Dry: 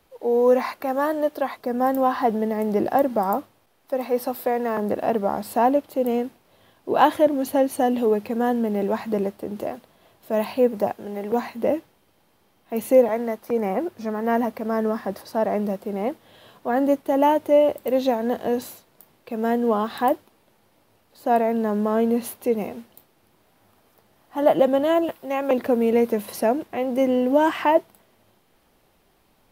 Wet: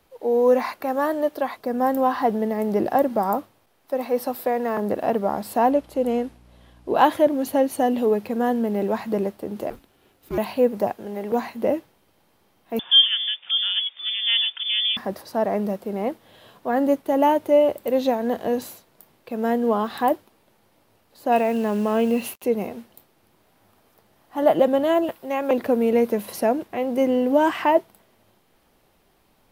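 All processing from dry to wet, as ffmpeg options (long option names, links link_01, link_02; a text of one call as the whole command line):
ffmpeg -i in.wav -filter_complex "[0:a]asettb=1/sr,asplit=3[link_01][link_02][link_03];[link_01]atrim=end=5.714[link_04];[link_02]atrim=start=5.71:end=6.96,asetpts=PTS-STARTPTS,afade=type=in:duration=0.004:curve=qsin,afade=type=out:start_time=1.246:duration=0.004:curve=qsin,lowpass=frequency=12000:width=0.5412,lowpass=frequency=12000:width=1.3066,aeval=exprs='val(0)+0.00282*(sin(2*PI*60*n/s)+sin(2*PI*2*60*n/s)/2+sin(2*PI*3*60*n/s)/3+sin(2*PI*4*60*n/s)/4+sin(2*PI*5*60*n/s)/5)':channel_layout=same[link_05];[link_03]atrim=start=6.956[link_06];[link_04][link_05]acrossfade=duration=0.004:curve1=hsin:curve2=qsin[link_07];[link_07][link_06]acrossfade=duration=0.004:curve1=qsin:curve2=hsin,asettb=1/sr,asplit=3[link_08][link_09][link_10];[link_08]atrim=end=9.704[link_11];[link_09]atrim=start=9.7:end=10.38,asetpts=PTS-STARTPTS,afade=type=in:duration=0.004:curve=qsin,afade=type=out:start_time=0.676:duration=0.004:curve=qsin,aeval=exprs='if(lt(val(0),0),0.447*val(0),val(0))':channel_layout=same,lowshelf=frequency=200:gain=-10,afreqshift=-280[link_12];[link_10]atrim=start=10.376[link_13];[link_11][link_12]acrossfade=duration=0.004:curve1=hsin:curve2=qsin[link_14];[link_14][link_13]acrossfade=duration=0.004:curve1=qsin:curve2=hsin,asettb=1/sr,asplit=3[link_15][link_16][link_17];[link_15]atrim=end=12.794[link_18];[link_16]atrim=start=12.79:end=14.97,asetpts=PTS-STARTPTS,afade=type=in:duration=0.004:curve=qsin,afade=type=out:start_time=2.176:duration=0.004:curve=qsin,lowpass=frequency=3100:width_type=q:width=0.5098,lowpass=frequency=3100:width_type=q:width=0.6013,lowpass=frequency=3100:width_type=q:width=0.9,lowpass=frequency=3100:width_type=q:width=2.563,afreqshift=-3700,acompressor=mode=upward:threshold=-34dB:ratio=2.5:attack=3.2:release=140:knee=2.83:detection=peak,highpass=frequency=190:poles=1[link_19];[link_17]atrim=start=14.966[link_20];[link_18][link_19]acrossfade=duration=0.004:curve1=hsin:curve2=qsin[link_21];[link_21][link_20]acrossfade=duration=0.004:curve1=qsin:curve2=hsin,asettb=1/sr,asplit=3[link_22][link_23][link_24];[link_22]atrim=end=21.324[link_25];[link_23]atrim=start=21.32:end=22.44,asetpts=PTS-STARTPTS,afade=type=in:duration=0.004:curve=qsin,afade=type=out:start_time=1.116:duration=0.004:curve=qsin,equalizer=frequency=2700:width=4.3:gain=14.5,acrusher=bits=6:mix=0:aa=0.5[link_26];[link_24]atrim=start=22.436[link_27];[link_25][link_26]acrossfade=duration=0.004:curve1=hsin:curve2=qsin[link_28];[link_28][link_27]acrossfade=duration=0.004:curve1=qsin:curve2=hsin" out.wav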